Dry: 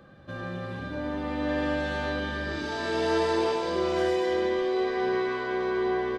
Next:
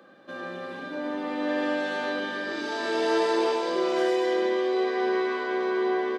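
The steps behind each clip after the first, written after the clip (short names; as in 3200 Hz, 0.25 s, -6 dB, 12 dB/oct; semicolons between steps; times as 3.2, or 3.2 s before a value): HPF 240 Hz 24 dB/oct; gain +1.5 dB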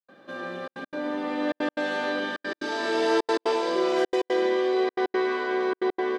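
step gate ".xxxxxxx.x" 178 bpm -60 dB; gain +1.5 dB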